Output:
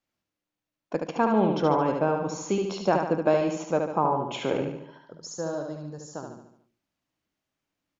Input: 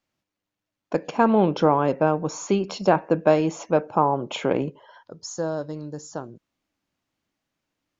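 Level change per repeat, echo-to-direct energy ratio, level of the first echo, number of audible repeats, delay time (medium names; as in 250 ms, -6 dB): -6.0 dB, -3.0 dB, -4.5 dB, 6, 73 ms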